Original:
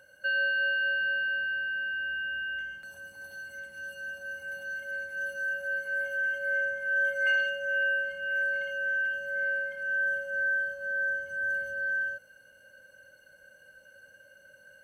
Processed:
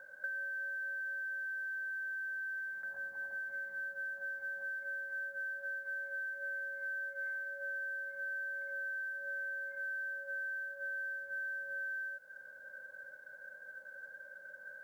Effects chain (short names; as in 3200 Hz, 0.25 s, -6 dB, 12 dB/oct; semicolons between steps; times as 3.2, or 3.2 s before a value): elliptic low-pass 1800 Hz, stop band 40 dB; tilt +4 dB/oct; compressor 16:1, threshold -42 dBFS, peak gain reduction 20.5 dB; companded quantiser 8-bit; gain +3.5 dB